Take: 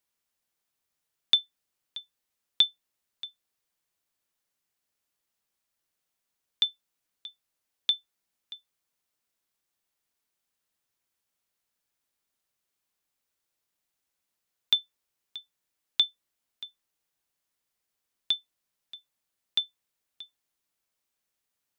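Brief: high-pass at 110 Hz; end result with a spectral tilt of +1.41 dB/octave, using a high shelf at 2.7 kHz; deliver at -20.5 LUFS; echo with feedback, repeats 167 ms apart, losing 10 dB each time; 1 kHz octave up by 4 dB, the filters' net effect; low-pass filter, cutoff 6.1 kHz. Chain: high-pass 110 Hz; low-pass 6.1 kHz; peaking EQ 1 kHz +4.5 dB; treble shelf 2.7 kHz +3.5 dB; feedback delay 167 ms, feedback 32%, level -10 dB; trim +6 dB

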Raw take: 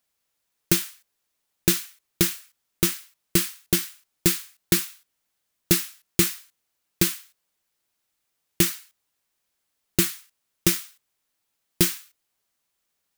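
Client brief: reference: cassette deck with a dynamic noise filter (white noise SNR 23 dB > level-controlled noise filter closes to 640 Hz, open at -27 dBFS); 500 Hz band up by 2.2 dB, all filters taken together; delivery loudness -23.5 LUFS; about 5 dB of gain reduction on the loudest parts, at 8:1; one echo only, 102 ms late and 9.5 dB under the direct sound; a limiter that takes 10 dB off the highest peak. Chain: peaking EQ 500 Hz +4 dB; compression 8:1, threshold -19 dBFS; peak limiter -13.5 dBFS; delay 102 ms -9.5 dB; white noise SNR 23 dB; level-controlled noise filter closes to 640 Hz, open at -27 dBFS; trim +11 dB

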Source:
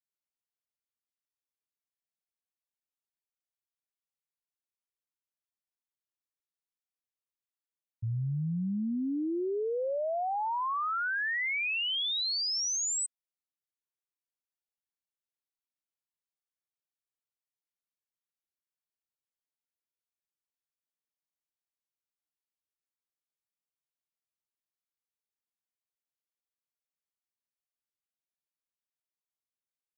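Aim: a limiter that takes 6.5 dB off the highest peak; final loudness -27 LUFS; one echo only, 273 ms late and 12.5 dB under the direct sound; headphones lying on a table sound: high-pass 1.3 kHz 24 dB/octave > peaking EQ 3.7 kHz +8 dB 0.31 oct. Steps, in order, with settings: peak limiter -35 dBFS; high-pass 1.3 kHz 24 dB/octave; peaking EQ 3.7 kHz +8 dB 0.31 oct; delay 273 ms -12.5 dB; trim +6.5 dB

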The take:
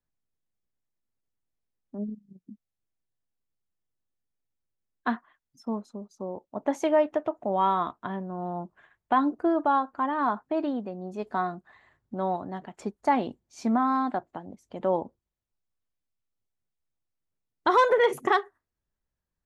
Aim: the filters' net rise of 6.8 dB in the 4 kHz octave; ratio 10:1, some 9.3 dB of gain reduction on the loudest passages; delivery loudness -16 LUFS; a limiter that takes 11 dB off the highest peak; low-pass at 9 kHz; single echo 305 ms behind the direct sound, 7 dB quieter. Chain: low-pass 9 kHz; peaking EQ 4 kHz +8.5 dB; compression 10:1, threshold -26 dBFS; peak limiter -26 dBFS; delay 305 ms -7 dB; trim +20.5 dB

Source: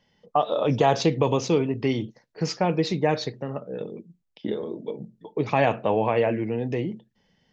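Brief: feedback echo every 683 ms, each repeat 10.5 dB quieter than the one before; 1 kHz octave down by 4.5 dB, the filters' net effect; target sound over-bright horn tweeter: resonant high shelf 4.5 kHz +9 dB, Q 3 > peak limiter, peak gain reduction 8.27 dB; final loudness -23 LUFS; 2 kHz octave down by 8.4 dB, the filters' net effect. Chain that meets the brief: peaking EQ 1 kHz -5 dB; peaking EQ 2 kHz -6.5 dB; resonant high shelf 4.5 kHz +9 dB, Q 3; feedback delay 683 ms, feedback 30%, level -10.5 dB; trim +4.5 dB; peak limiter -10.5 dBFS

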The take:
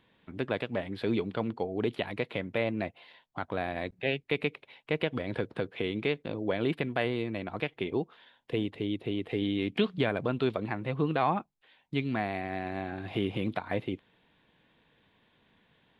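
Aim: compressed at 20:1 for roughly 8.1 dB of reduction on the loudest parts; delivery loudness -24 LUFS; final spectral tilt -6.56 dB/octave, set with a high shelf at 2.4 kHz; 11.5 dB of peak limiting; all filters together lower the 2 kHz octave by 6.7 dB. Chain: peaking EQ 2 kHz -4 dB; treble shelf 2.4 kHz -8.5 dB; compression 20:1, threshold -31 dBFS; trim +18.5 dB; peak limiter -12.5 dBFS

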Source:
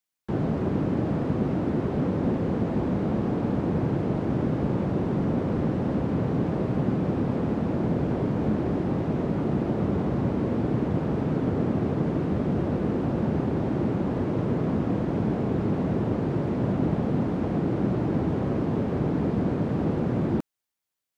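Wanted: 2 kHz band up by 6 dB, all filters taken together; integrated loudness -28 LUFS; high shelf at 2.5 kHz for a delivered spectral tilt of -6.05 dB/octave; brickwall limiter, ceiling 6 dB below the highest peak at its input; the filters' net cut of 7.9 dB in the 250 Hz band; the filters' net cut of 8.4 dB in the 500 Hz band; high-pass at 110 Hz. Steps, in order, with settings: high-pass 110 Hz; peaking EQ 250 Hz -8.5 dB; peaking EQ 500 Hz -8.5 dB; peaking EQ 2 kHz +4.5 dB; treble shelf 2.5 kHz +9 dB; trim +5.5 dB; peak limiter -18.5 dBFS

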